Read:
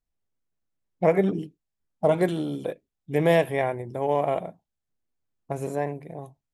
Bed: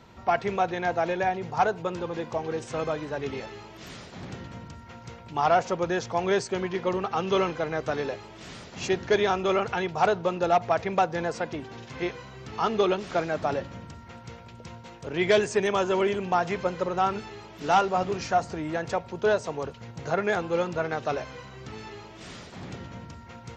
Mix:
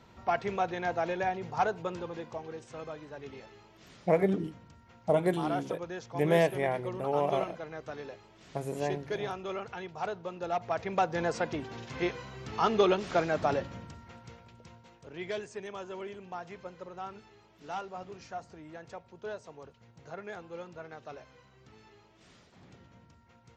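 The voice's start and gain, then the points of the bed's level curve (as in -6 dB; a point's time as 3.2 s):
3.05 s, -5.0 dB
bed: 1.89 s -5 dB
2.64 s -12.5 dB
10.32 s -12.5 dB
11.29 s -1 dB
13.51 s -1 dB
15.5 s -16.5 dB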